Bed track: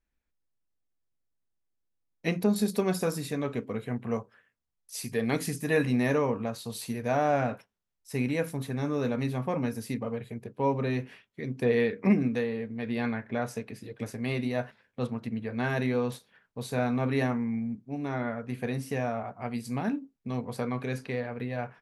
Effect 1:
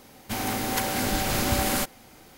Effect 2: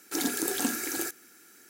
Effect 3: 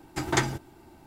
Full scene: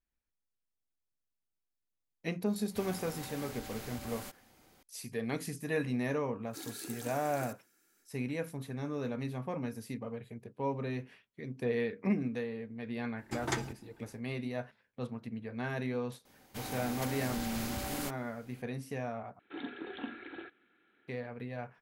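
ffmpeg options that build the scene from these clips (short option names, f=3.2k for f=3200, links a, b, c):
-filter_complex "[1:a]asplit=2[a][b];[2:a]asplit=2[c][d];[0:a]volume=-7.5dB[e];[a]acompressor=threshold=-29dB:ratio=6:attack=3.2:release=140:knee=1:detection=peak[f];[b]asoftclip=type=tanh:threshold=-18.5dB[g];[d]aresample=8000,aresample=44100[h];[e]asplit=2[i][j];[i]atrim=end=19.394[k];[h]atrim=end=1.69,asetpts=PTS-STARTPTS,volume=-10.5dB[l];[j]atrim=start=21.076[m];[f]atrim=end=2.37,asetpts=PTS-STARTPTS,volume=-12.5dB,afade=t=in:d=0.004:c=hsin,afade=t=out:st=2.366:d=0.004:c=hsin,adelay=2460[n];[c]atrim=end=1.69,asetpts=PTS-STARTPTS,volume=-16dB,afade=t=in:d=0.1,afade=t=out:st=1.59:d=0.1,adelay=283122S[o];[3:a]atrim=end=1.06,asetpts=PTS-STARTPTS,volume=-9.5dB,afade=t=in:d=0.05,afade=t=out:st=1.01:d=0.05,adelay=13150[p];[g]atrim=end=2.37,asetpts=PTS-STARTPTS,volume=-12dB,afade=t=in:d=0.004:c=hsin,afade=t=out:st=2.366:d=0.004:c=hsin,adelay=16250[q];[k][l]acrossfade=d=0.004:c1=hsin:c2=hsin[r];[r][m]acrossfade=d=0.004:c1=hsin:c2=hsin[s];[s][n][o][p][q]amix=inputs=5:normalize=0"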